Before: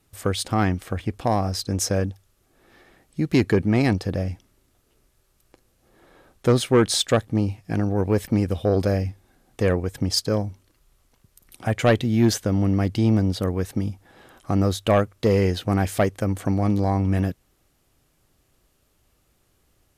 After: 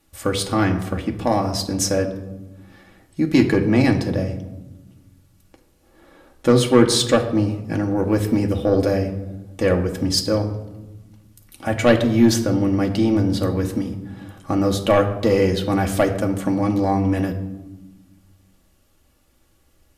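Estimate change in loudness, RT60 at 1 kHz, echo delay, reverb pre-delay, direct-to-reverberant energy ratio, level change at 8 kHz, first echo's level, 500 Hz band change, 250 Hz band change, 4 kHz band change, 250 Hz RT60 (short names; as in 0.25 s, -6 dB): +3.0 dB, 0.95 s, none, 3 ms, 2.0 dB, +3.0 dB, none, +3.5 dB, +4.0 dB, +3.0 dB, 1.9 s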